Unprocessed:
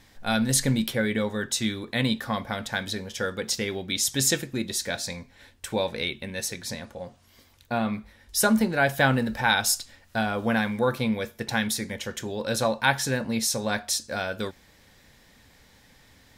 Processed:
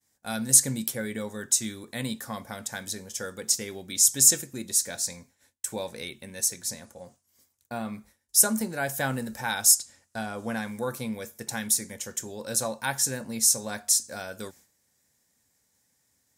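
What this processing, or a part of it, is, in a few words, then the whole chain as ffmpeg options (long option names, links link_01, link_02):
budget condenser microphone: -filter_complex "[0:a]highpass=82,highshelf=frequency=5100:width_type=q:width=1.5:gain=12.5,agate=range=-33dB:threshold=-42dB:ratio=3:detection=peak,asettb=1/sr,asplit=3[link_01][link_02][link_03];[link_01]atrim=end=9.754[link_04];[link_02]atrim=start=9.75:end=10.68,asetpts=PTS-STARTPTS,afade=type=in:duration=0.004:curve=qsin,afade=type=out:start_time=0.926:duration=0.004:curve=qsin,lowpass=9800[link_05];[link_03]atrim=start=10.676[link_06];[link_04][link_05]acrossfade=duration=0.004:curve1=hsin:curve2=qsin[link_07];[link_07][link_06]acrossfade=duration=0.004:curve1=qsin:curve2=hsin,volume=-7dB"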